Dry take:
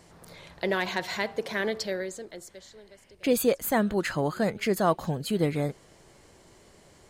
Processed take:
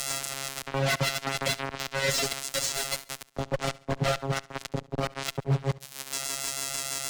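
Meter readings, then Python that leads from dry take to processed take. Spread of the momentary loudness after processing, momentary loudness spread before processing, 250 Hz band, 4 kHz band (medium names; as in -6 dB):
8 LU, 12 LU, -7.5 dB, +7.0 dB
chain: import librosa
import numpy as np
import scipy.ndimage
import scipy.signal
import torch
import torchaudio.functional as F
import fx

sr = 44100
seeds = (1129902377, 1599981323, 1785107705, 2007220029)

p1 = fx.envelope_flatten(x, sr, power=0.3)
p2 = fx.env_lowpass_down(p1, sr, base_hz=370.0, full_db=-21.5)
p3 = fx.peak_eq(p2, sr, hz=7000.0, db=10.5, octaves=1.8)
p4 = p3 + 0.83 * np.pad(p3, (int(1.5 * sr / 1000.0), 0))[:len(p3)]
p5 = fx.transient(p4, sr, attack_db=8, sustain_db=1)
p6 = fx.over_compress(p5, sr, threshold_db=-35.0, ratio=-0.5)
p7 = fx.rotary(p6, sr, hz=6.3)
p8 = fx.robotise(p7, sr, hz=136.0)
p9 = fx.step_gate(p8, sr, bpm=71, pattern='x..xxxxx.xx.x', floor_db=-12.0, edge_ms=4.5)
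p10 = fx.fuzz(p9, sr, gain_db=36.0, gate_db=-44.0)
p11 = p10 + fx.echo_feedback(p10, sr, ms=69, feedback_pct=36, wet_db=-21.5, dry=0)
p12 = fx.band_squash(p11, sr, depth_pct=40)
y = p12 * 10.0 ** (-4.0 / 20.0)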